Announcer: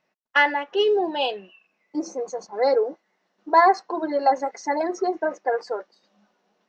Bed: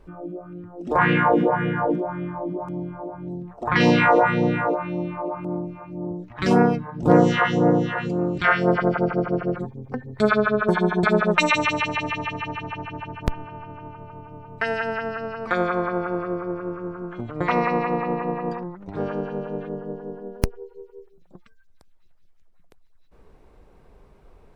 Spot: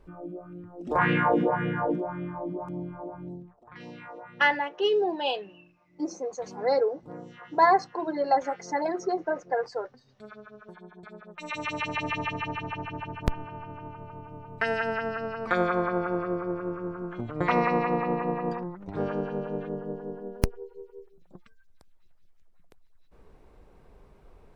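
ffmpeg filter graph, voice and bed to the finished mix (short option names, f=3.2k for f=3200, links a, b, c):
-filter_complex "[0:a]adelay=4050,volume=-4dB[a];[1:a]volume=20dB,afade=t=out:st=3.21:d=0.42:silence=0.0749894,afade=t=in:st=11.37:d=0.81:silence=0.0562341[b];[a][b]amix=inputs=2:normalize=0"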